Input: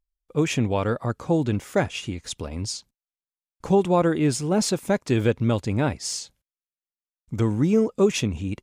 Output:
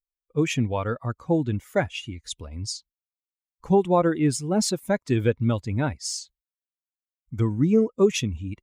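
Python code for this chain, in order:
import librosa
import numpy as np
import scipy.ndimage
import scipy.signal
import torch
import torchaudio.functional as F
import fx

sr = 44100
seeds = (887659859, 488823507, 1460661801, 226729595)

y = fx.bin_expand(x, sr, power=1.5)
y = y * librosa.db_to_amplitude(1.5)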